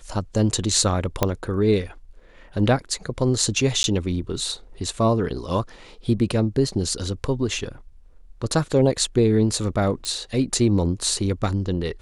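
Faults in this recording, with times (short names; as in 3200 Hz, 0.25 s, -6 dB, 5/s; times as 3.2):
1.23 pop -4 dBFS
3.83–3.84 gap
10.05 pop -15 dBFS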